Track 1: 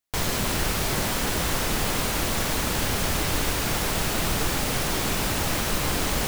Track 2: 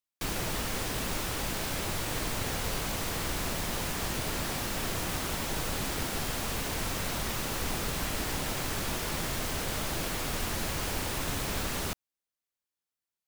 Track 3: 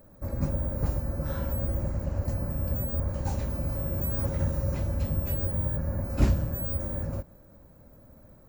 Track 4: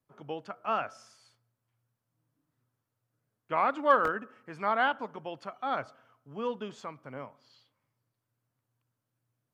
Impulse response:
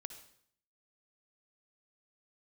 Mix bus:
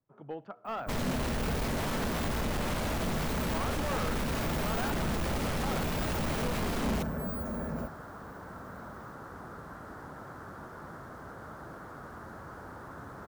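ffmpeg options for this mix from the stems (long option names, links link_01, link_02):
-filter_complex "[0:a]alimiter=limit=-20dB:level=0:latency=1:release=80,adelay=750,volume=1.5dB[link_01];[1:a]highpass=79,highshelf=frequency=1900:width_type=q:width=3:gain=-10,adelay=1700,volume=-10dB[link_02];[2:a]highpass=frequency=190:poles=1,aecho=1:1:4.6:0.82,adelay=650,volume=3dB[link_03];[3:a]lowpass=frequency=1500:poles=1,asoftclip=type=hard:threshold=-28.5dB,volume=-2dB,asplit=2[link_04][link_05];[link_05]volume=-10dB[link_06];[4:a]atrim=start_sample=2205[link_07];[link_06][link_07]afir=irnorm=-1:irlink=0[link_08];[link_01][link_02][link_03][link_04][link_08]amix=inputs=5:normalize=0,highshelf=frequency=3200:gain=-10,asoftclip=type=tanh:threshold=-26.5dB"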